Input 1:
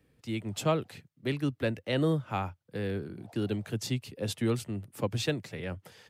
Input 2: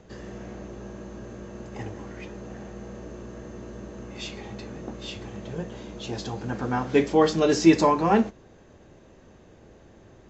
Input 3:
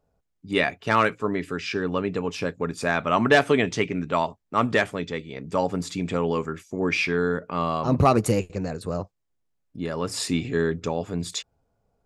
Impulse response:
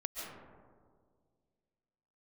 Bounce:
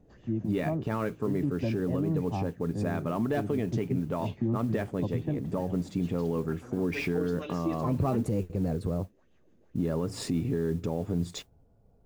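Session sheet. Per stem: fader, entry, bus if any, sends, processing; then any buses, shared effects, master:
−10.0 dB, 0.00 s, bus A, no send, low-pass filter 1,400 Hz 12 dB per octave; parametric band 430 Hz +13 dB 1.3 octaves; comb filter 1.1 ms, depth 99%
−17.5 dB, 0.00 s, no bus, no send, rotating-speaker cabinet horn 6.7 Hz; auto-filter bell 2.2 Hz 210–3,300 Hz +13 dB
+1.0 dB, 0.00 s, bus A, no send, noise that follows the level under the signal 16 dB; automatic ducking −6 dB, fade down 1.90 s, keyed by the first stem
bus A: 0.0 dB, tilt shelving filter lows +9.5 dB, about 800 Hz; downward compressor 2.5 to 1, threshold −26 dBFS, peak gain reduction 13 dB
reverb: not used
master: brickwall limiter −19.5 dBFS, peak gain reduction 7.5 dB

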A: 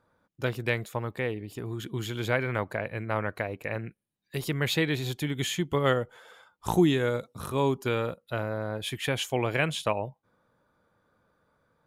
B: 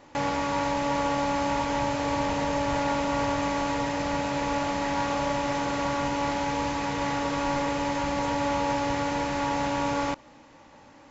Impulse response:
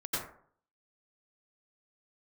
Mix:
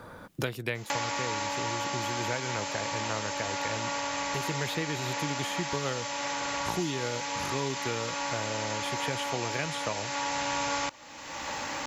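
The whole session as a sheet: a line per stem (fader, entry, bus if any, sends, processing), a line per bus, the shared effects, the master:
−6.5 dB, 0.00 s, no send, no processing
+1.5 dB, 0.75 s, no send, spectral tilt +4.5 dB per octave; automatic ducking −10 dB, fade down 1.90 s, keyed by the first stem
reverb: not used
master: multiband upward and downward compressor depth 100%

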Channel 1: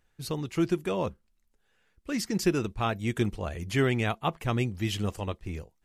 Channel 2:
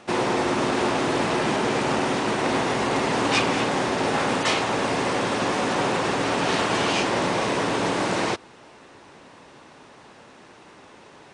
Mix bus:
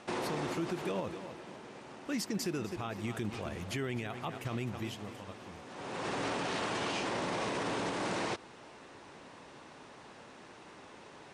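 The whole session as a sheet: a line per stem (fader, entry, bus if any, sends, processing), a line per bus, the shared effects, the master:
0:04.77 −3.5 dB → 0:04.98 −14.5 dB, 0.00 s, no send, echo send −14 dB, high-pass filter 110 Hz 12 dB per octave
−4.5 dB, 0.00 s, no send, no echo send, automatic ducking −22 dB, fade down 1.30 s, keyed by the first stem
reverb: not used
echo: repeating echo 257 ms, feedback 43%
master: brickwall limiter −26.5 dBFS, peak gain reduction 10.5 dB

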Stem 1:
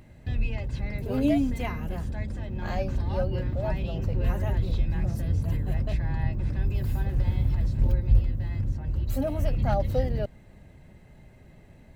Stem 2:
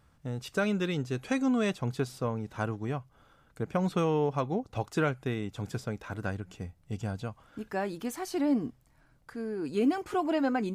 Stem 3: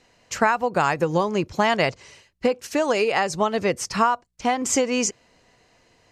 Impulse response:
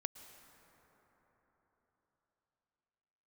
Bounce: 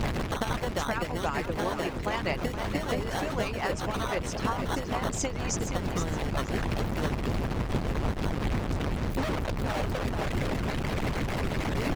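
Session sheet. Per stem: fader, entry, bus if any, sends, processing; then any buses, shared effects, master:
+2.0 dB, 0.00 s, no bus, no send, echo send −4.5 dB, sign of each sample alone; high-shelf EQ 4,300 Hz −7.5 dB; automatic ducking −16 dB, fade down 1.30 s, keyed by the third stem
−2.5 dB, 2.00 s, bus A, no send, no echo send, no processing
+1.5 dB, 0.00 s, bus A, no send, echo send −8 dB, no processing
bus A: 0.0 dB, decimation without filtering 18×; downward compressor 6 to 1, threshold −25 dBFS, peak gain reduction 13 dB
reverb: not used
echo: repeating echo 470 ms, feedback 33%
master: harmonic and percussive parts rebalanced harmonic −17 dB; high-shelf EQ 8,600 Hz −8 dB; speech leveller 0.5 s

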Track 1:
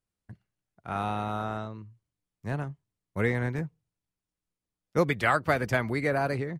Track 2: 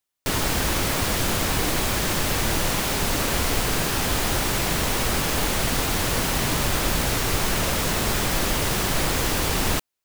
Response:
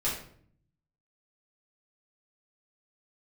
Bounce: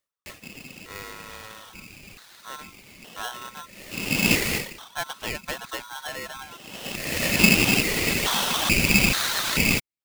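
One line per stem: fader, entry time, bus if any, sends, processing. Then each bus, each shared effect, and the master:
−7.0 dB, 0.00 s, no send, no processing
+1.0 dB, 0.00 s, no send, ring modulation 1,400 Hz; high-pass on a step sequencer 2.3 Hz 620–2,700 Hz; automatic ducking −24 dB, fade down 0.40 s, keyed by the first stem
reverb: not used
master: reverb reduction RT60 0.75 s; ring modulator with a square carrier 1,200 Hz

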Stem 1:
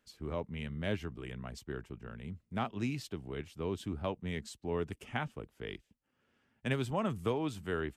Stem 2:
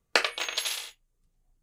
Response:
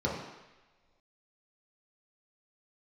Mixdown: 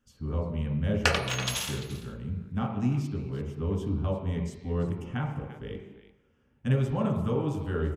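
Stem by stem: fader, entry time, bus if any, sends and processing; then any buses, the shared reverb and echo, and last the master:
−1.5 dB, 0.00 s, send −8 dB, echo send −15.5 dB, low-shelf EQ 77 Hz +11 dB
+0.5 dB, 0.90 s, send −12 dB, echo send −18.5 dB, no processing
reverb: on, pre-delay 3 ms
echo: single-tap delay 343 ms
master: no processing

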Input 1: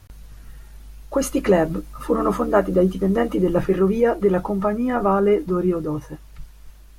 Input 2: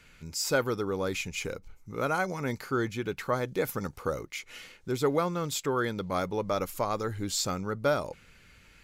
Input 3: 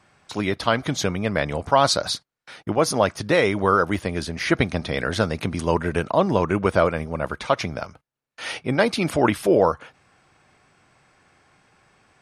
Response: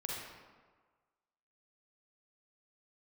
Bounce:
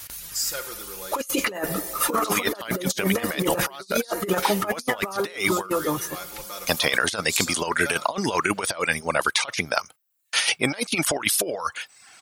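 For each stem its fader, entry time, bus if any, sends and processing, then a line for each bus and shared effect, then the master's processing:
+2.0 dB, 0.00 s, send −17.5 dB, reverb reduction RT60 0.61 s
−16.5 dB, 0.00 s, send −7.5 dB, comb filter 5.7 ms, depth 80%
+2.5 dB, 1.95 s, muted 0:05.70–0:06.67, no send, reverb reduction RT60 0.55 s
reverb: on, RT60 1.5 s, pre-delay 38 ms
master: spectral tilt +4.5 dB per octave; compressor whose output falls as the input rises −24 dBFS, ratio −0.5

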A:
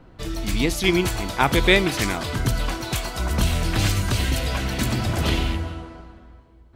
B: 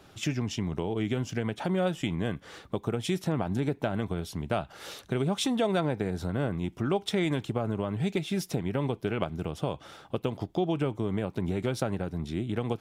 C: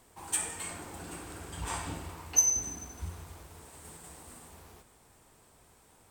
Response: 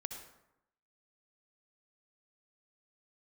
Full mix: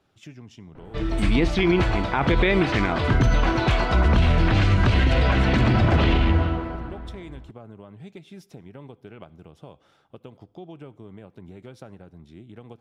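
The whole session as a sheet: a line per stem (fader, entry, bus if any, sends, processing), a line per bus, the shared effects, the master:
+2.5 dB, 0.75 s, no send, low-pass filter 2,800 Hz 12 dB per octave; automatic gain control gain up to 7 dB
−14.0 dB, 0.00 s, send −15 dB, no processing
−7.5 dB, 0.85 s, muted 0:03.85–0:04.35, send −13 dB, automatic ducking −14 dB, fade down 1.95 s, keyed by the second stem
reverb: on, RT60 0.85 s, pre-delay 58 ms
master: high-shelf EQ 6,300 Hz −6.5 dB; brickwall limiter −10.5 dBFS, peak gain reduction 11 dB

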